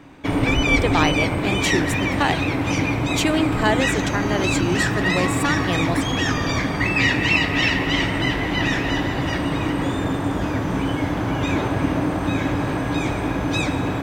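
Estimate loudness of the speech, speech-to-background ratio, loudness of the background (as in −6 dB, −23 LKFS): −25.0 LKFS, −4.0 dB, −21.0 LKFS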